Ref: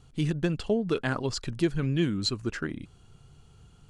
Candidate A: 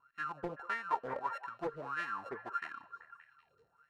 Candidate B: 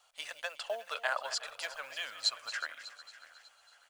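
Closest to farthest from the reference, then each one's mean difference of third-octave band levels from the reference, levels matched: A, B; 11.0, 17.0 dB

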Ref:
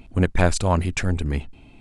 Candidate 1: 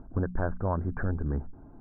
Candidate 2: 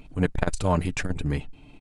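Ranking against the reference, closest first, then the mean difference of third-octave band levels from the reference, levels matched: 2, 1; 2.5, 8.0 dB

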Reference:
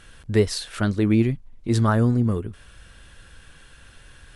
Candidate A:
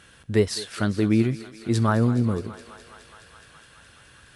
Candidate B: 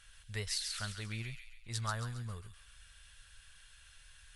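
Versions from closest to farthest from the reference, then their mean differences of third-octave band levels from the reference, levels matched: A, B; 3.0, 8.5 dB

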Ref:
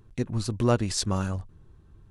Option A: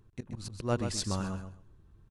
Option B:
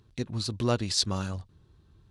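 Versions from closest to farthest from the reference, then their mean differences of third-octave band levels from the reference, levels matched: B, A; 1.5, 4.5 dB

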